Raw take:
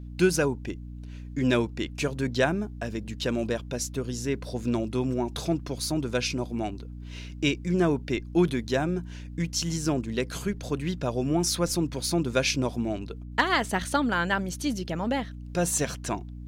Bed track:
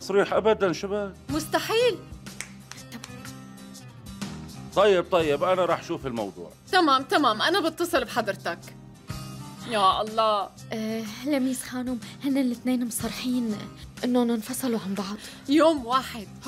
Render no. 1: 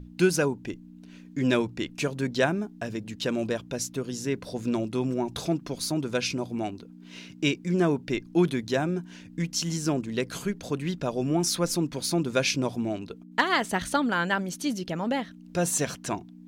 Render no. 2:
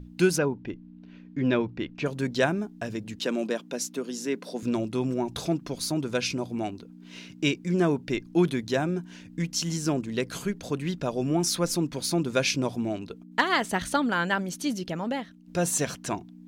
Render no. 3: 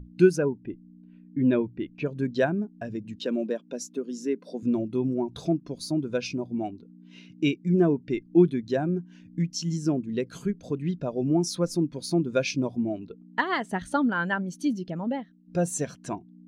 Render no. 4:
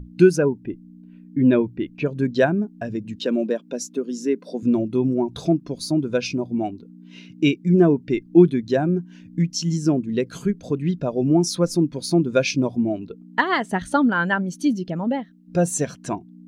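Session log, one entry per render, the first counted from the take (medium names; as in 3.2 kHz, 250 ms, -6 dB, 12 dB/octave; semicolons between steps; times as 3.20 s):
hum notches 60/120 Hz
0.38–2.06 s: distance through air 230 m; 3.19–4.63 s: steep high-pass 180 Hz; 14.84–15.47 s: fade out linear, to -7 dB
in parallel at +1 dB: compression, threshold -35 dBFS, peak gain reduction 17.5 dB; on the sum: spectral contrast expander 1.5:1
trim +6 dB; peak limiter -3 dBFS, peak gain reduction 2 dB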